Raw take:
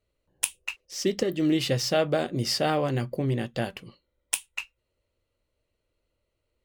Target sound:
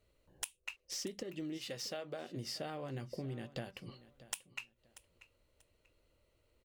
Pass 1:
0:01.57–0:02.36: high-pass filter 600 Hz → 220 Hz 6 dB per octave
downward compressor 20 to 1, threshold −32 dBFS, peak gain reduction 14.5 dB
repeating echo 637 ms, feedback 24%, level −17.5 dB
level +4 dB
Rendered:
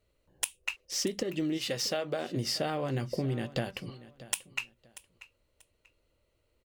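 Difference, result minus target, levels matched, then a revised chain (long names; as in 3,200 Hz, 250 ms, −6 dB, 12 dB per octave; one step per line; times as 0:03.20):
downward compressor: peak gain reduction −10.5 dB
0:01.57–0:02.36: high-pass filter 600 Hz → 220 Hz 6 dB per octave
downward compressor 20 to 1, threshold −43 dBFS, peak gain reduction 24.5 dB
repeating echo 637 ms, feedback 24%, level −17.5 dB
level +4 dB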